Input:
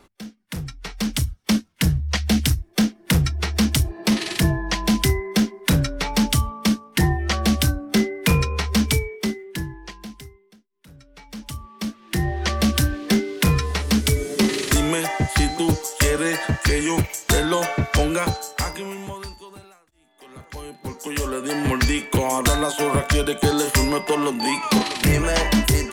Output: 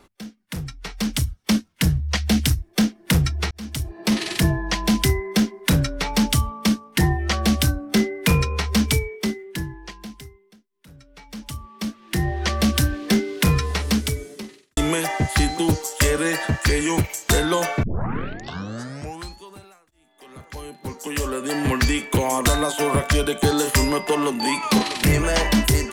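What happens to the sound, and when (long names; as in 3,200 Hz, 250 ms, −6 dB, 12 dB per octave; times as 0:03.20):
0:03.51–0:04.18: fade in
0:13.87–0:14.77: fade out quadratic
0:17.83: tape start 1.59 s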